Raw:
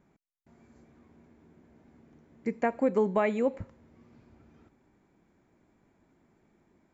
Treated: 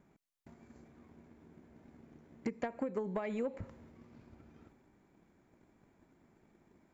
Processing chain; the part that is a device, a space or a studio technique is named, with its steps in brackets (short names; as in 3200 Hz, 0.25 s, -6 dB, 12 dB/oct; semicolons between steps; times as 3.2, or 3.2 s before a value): drum-bus smash (transient shaper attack +9 dB, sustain +5 dB; compressor 10:1, threshold -29 dBFS, peak gain reduction 15.5 dB; soft clip -24.5 dBFS, distortion -16 dB); gain -2 dB